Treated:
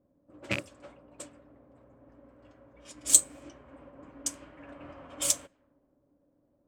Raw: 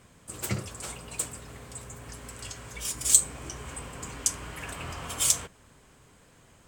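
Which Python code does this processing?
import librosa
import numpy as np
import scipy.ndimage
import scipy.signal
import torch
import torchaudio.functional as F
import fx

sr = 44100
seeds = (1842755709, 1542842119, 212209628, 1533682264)

y = fx.rattle_buzz(x, sr, strikes_db=-31.0, level_db=-11.0)
y = fx.env_lowpass(y, sr, base_hz=530.0, full_db=-25.5)
y = fx.low_shelf(y, sr, hz=360.0, db=-5.5)
y = fx.small_body(y, sr, hz=(290.0, 560.0), ring_ms=65, db=17)
y = fx.upward_expand(y, sr, threshold_db=-42.0, expansion=1.5)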